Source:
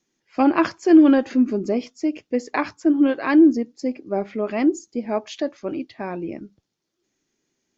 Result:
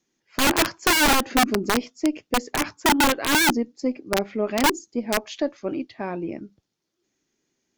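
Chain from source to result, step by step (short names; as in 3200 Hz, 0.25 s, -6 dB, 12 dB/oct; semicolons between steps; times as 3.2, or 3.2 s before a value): added harmonics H 4 -37 dB, 5 -25 dB, 7 -26 dB, 8 -45 dB, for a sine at -4 dBFS; wrapped overs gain 12.5 dB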